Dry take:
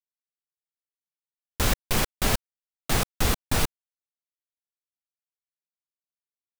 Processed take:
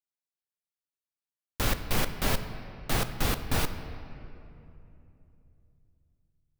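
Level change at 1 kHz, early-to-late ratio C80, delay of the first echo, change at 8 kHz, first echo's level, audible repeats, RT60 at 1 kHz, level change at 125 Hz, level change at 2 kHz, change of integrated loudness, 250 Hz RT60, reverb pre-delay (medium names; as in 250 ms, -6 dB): -3.0 dB, 10.5 dB, no echo, -6.5 dB, no echo, no echo, 2.7 s, -2.5 dB, -3.0 dB, -4.0 dB, 3.5 s, 3 ms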